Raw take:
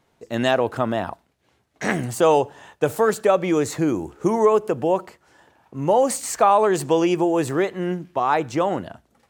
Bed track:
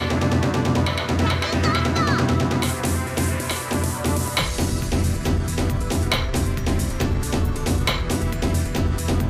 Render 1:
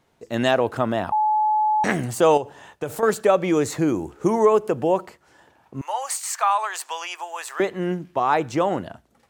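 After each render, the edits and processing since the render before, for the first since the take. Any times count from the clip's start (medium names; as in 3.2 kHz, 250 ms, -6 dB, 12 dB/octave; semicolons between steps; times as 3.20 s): 1.12–1.84 s: bleep 856 Hz -16.5 dBFS; 2.37–3.03 s: compression 3:1, threshold -25 dBFS; 5.81–7.60 s: high-pass 910 Hz 24 dB/octave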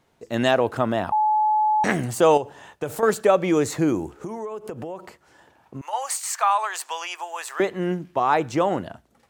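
4.17–5.93 s: compression 8:1, threshold -29 dBFS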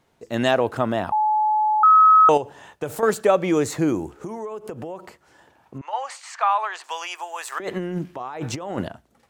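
1.83–2.29 s: bleep 1.28 kHz -9 dBFS; 5.78–6.84 s: low-pass 3.6 kHz; 7.52–8.88 s: compressor with a negative ratio -29 dBFS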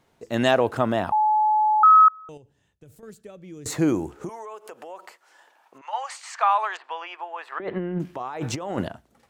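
2.08–3.66 s: amplifier tone stack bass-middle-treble 10-0-1; 4.29–6.20 s: high-pass 700 Hz; 6.77–8.00 s: distance through air 420 m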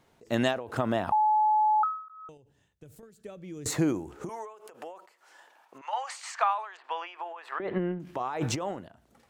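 compression 4:1, threshold -22 dBFS, peak gain reduction 9 dB; endings held to a fixed fall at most 100 dB/s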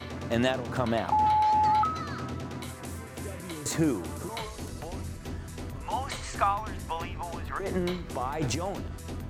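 add bed track -16.5 dB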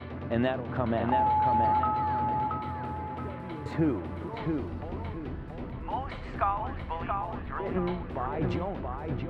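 distance through air 440 m; on a send: feedback echo behind a low-pass 677 ms, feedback 34%, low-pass 3.4 kHz, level -4.5 dB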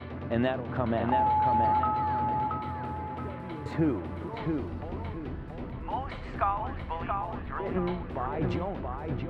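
no audible change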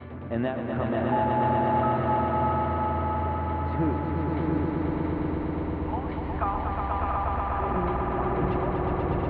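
distance through air 320 m; echo with a slow build-up 121 ms, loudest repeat 5, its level -4.5 dB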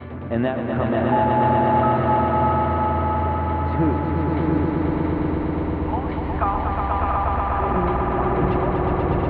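trim +6 dB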